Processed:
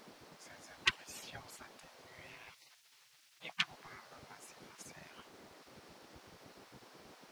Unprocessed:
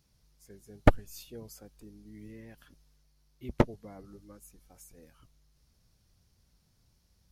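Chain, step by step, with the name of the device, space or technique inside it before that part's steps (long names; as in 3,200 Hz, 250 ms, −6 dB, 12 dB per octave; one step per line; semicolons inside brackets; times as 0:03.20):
aircraft cabin announcement (band-pass filter 390–4,200 Hz; soft clipping −17 dBFS, distortion −12 dB; brown noise bed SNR 13 dB)
0:02.51–0:03.72: Butterworth high-pass 160 Hz 72 dB per octave
gate on every frequency bin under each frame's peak −20 dB weak
level +14.5 dB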